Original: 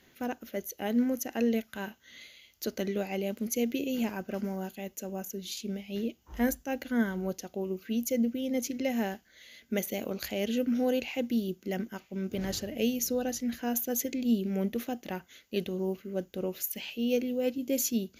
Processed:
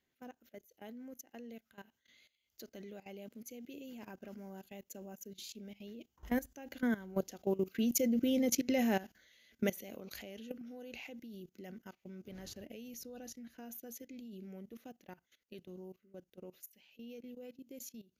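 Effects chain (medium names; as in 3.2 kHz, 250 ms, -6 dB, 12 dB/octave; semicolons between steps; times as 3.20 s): Doppler pass-by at 8.24 s, 5 m/s, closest 3.8 m; level held to a coarse grid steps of 18 dB; trim +6 dB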